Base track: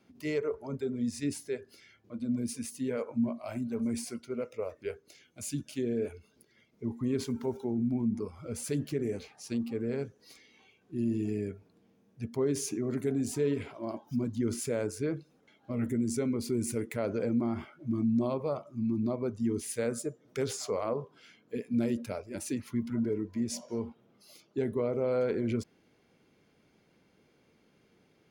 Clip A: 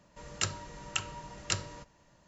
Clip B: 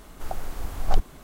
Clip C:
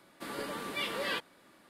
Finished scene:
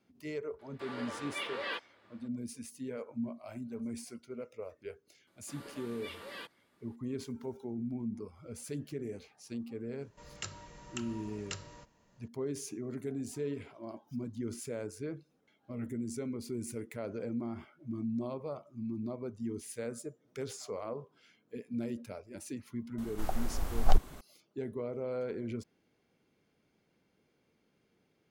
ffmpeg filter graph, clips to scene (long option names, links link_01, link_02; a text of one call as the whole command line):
ffmpeg -i bed.wav -i cue0.wav -i cue1.wav -i cue2.wav -filter_complex "[3:a]asplit=2[link_01][link_02];[0:a]volume=-7.5dB[link_03];[link_01]highpass=350,lowpass=3800[link_04];[1:a]alimiter=limit=-19dB:level=0:latency=1:release=152[link_05];[link_04]atrim=end=1.69,asetpts=PTS-STARTPTS,volume=-2.5dB,afade=type=in:duration=0.004:curve=hsin,afade=type=out:start_time=1.686:duration=0.004:curve=hsin,adelay=590[link_06];[link_02]atrim=end=1.69,asetpts=PTS-STARTPTS,volume=-11.5dB,afade=type=in:duration=0.004:curve=hsin,afade=type=out:start_time=1.686:duration=0.004:curve=hsin,adelay=5270[link_07];[link_05]atrim=end=2.27,asetpts=PTS-STARTPTS,volume=-6dB,afade=type=in:duration=0.004:curve=hsin,afade=type=out:start_time=2.266:duration=0.004:curve=hsin,adelay=10010[link_08];[2:a]atrim=end=1.23,asetpts=PTS-STARTPTS,volume=-2.5dB,afade=type=in:duration=0.004:curve=hsin,afade=type=out:start_time=1.226:duration=0.004:curve=hsin,adelay=22980[link_09];[link_03][link_06][link_07][link_08][link_09]amix=inputs=5:normalize=0" out.wav